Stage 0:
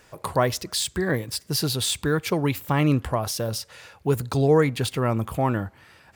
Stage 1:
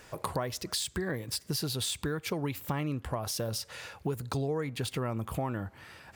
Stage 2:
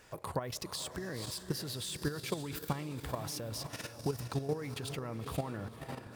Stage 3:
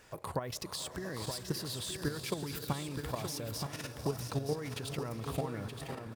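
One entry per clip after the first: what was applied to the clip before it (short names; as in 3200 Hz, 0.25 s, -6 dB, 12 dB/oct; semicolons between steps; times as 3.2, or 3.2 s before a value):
compressor 6:1, threshold -32 dBFS, peak gain reduction 17 dB; gain +1.5 dB
diffused feedback echo 0.502 s, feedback 49%, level -9 dB; level quantiser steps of 10 dB
echo 0.923 s -7 dB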